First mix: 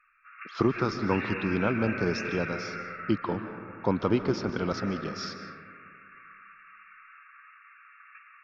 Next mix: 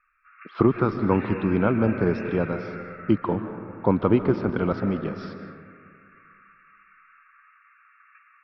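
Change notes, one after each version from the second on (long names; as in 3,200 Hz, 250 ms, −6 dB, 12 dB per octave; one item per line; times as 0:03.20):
speech +6.5 dB
master: add high-frequency loss of the air 440 metres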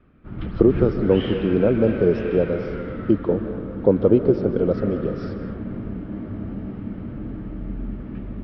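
speech: add octave-band graphic EQ 500/1,000/2,000 Hz +11/−11/−12 dB
background: remove linear-phase brick-wall band-pass 1,100–2,800 Hz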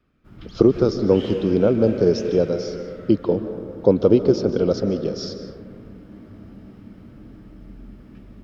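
background −11.5 dB
master: remove high-frequency loss of the air 440 metres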